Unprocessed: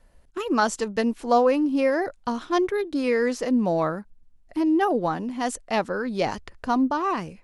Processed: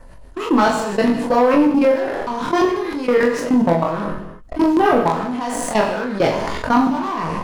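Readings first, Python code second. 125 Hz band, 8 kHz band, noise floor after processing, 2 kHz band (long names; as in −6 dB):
+9.0 dB, +5.5 dB, −39 dBFS, +6.0 dB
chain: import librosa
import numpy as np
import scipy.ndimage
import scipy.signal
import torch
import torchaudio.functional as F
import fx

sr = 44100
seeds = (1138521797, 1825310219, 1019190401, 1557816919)

p1 = fx.spec_trails(x, sr, decay_s=0.53)
p2 = fx.high_shelf(p1, sr, hz=2300.0, db=-6.5)
p3 = fx.level_steps(p2, sr, step_db=22)
p4 = fx.filter_lfo_notch(p3, sr, shape='saw_down', hz=6.5, low_hz=350.0, high_hz=4200.0, q=1.7)
p5 = fx.leveller(p4, sr, passes=2)
p6 = fx.peak_eq(p5, sr, hz=1000.0, db=5.5, octaves=0.33)
p7 = p6 + fx.room_early_taps(p6, sr, ms=(24, 41), db=(-4.0, -7.5), dry=0)
p8 = fx.rev_gated(p7, sr, seeds[0], gate_ms=250, shape='falling', drr_db=9.0)
y = fx.env_flatten(p8, sr, amount_pct=50)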